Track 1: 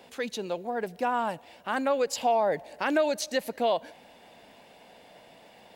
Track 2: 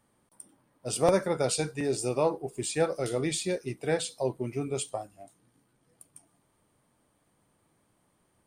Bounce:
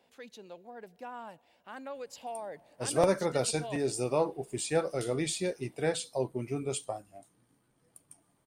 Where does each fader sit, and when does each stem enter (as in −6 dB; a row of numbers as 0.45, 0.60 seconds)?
−15.5, −2.0 decibels; 0.00, 1.95 seconds